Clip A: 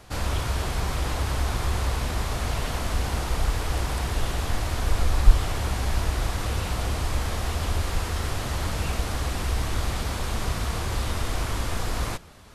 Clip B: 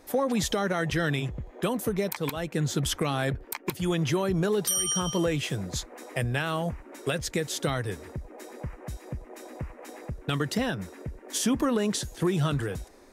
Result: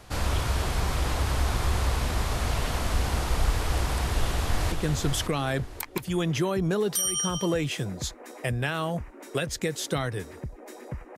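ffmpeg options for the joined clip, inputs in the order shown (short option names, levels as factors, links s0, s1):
-filter_complex "[0:a]apad=whole_dur=11.17,atrim=end=11.17,atrim=end=4.722[s0];[1:a]atrim=start=2.438:end=8.89[s1];[s0][s1]acrossfade=d=0.004:c1=hsin:c2=hsin,asplit=2[s2][s3];[s3]afade=t=in:st=4.04:d=0.01,afade=t=out:st=4.72:d=0.01,aecho=0:1:550|1100|1650:0.530884|0.132721|0.0331803[s4];[s2][s4]amix=inputs=2:normalize=0"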